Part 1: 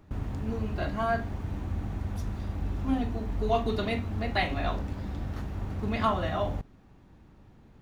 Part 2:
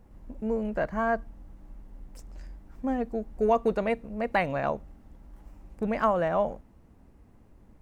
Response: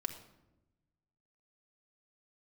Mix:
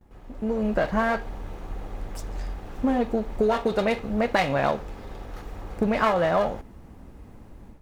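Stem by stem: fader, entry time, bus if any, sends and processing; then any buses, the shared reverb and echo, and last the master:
-10.5 dB, 0.00 s, no send, comb filter that takes the minimum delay 2.4 ms; resonant low shelf 350 Hz -11.5 dB, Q 1.5
-0.5 dB, 0.00 s, no send, compression, threshold -30 dBFS, peak gain reduction 11.5 dB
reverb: none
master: gate with hold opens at -51 dBFS; level rider gain up to 11 dB

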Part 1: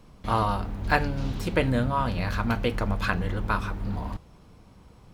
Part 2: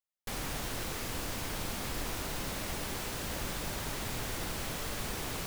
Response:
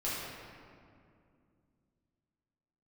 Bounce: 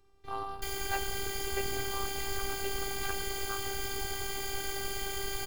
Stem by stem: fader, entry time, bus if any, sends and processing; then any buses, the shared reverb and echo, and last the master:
-10.5 dB, 0.00 s, no send, none
+1.0 dB, 0.35 s, no send, rippled EQ curve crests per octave 1.8, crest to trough 15 dB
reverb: none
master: hum notches 50/100 Hz; robot voice 392 Hz

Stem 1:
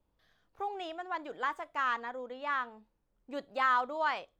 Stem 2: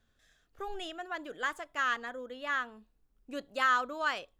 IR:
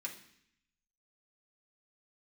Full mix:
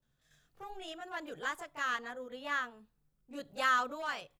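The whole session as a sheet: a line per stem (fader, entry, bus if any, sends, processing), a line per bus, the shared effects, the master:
-11.5 dB, 0.00 s, send -14.5 dB, overload inside the chain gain 30.5 dB
-2.0 dB, 22 ms, polarity flipped, no send, treble shelf 5.7 kHz +7 dB; random-step tremolo 3.5 Hz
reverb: on, RT60 0.65 s, pre-delay 3 ms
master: peaking EQ 140 Hz +15 dB 0.46 oct

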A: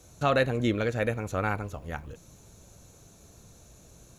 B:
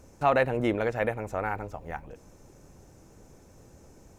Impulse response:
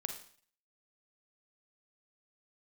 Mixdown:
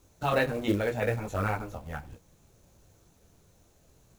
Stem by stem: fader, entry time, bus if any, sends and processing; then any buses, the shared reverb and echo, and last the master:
+2.5 dB, 0.00 s, no send, detune thickener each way 24 cents
-6.0 dB, 0.00 s, polarity flipped, send -4.5 dB, stepped phaser 8.8 Hz 580–1900 Hz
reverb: on, RT60 0.50 s, pre-delay 37 ms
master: gate -43 dBFS, range -8 dB; treble shelf 3.5 kHz -5 dB; companded quantiser 6-bit

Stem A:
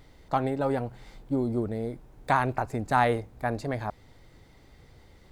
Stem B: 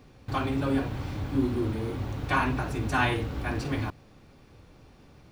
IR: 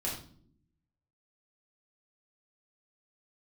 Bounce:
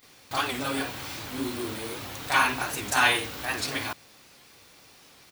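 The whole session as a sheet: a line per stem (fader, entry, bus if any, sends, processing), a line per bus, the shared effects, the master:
-7.0 dB, 0.00 s, no send, none
+2.0 dB, 28 ms, no send, none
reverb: none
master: tilt EQ +4.5 dB/octave; warped record 78 rpm, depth 160 cents

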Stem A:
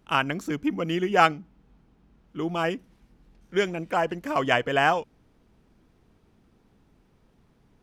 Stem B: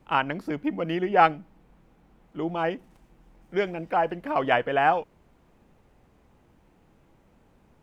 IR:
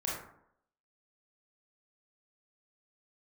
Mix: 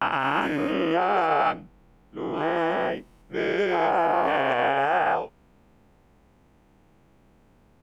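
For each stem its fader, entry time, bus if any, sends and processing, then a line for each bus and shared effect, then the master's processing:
-13.0 dB, 0.00 s, no send, none
-5.0 dB, 15 ms, no send, every event in the spectrogram widened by 480 ms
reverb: none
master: peak limiter -13.5 dBFS, peak gain reduction 8.5 dB

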